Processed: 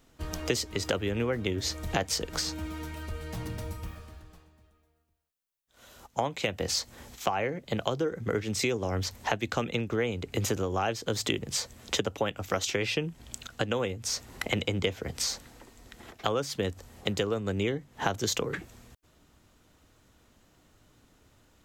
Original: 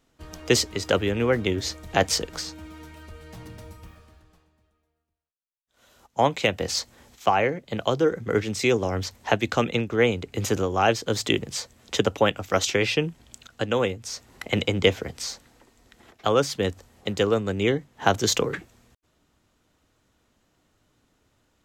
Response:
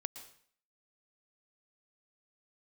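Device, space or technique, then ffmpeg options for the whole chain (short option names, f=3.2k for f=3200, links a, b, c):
ASMR close-microphone chain: -af "lowshelf=f=110:g=4,acompressor=threshold=-31dB:ratio=5,highshelf=f=12k:g=5.5,volume=4dB"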